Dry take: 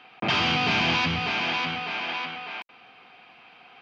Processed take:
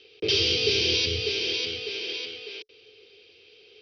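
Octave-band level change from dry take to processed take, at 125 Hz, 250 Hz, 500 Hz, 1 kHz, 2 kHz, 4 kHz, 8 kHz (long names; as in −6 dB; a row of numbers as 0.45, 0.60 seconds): −4.0 dB, −5.5 dB, +6.0 dB, −24.0 dB, −6.0 dB, +3.5 dB, can't be measured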